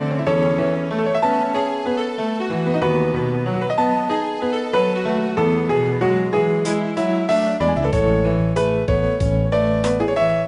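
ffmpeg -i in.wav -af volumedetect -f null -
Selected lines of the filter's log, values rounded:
mean_volume: -18.8 dB
max_volume: -7.1 dB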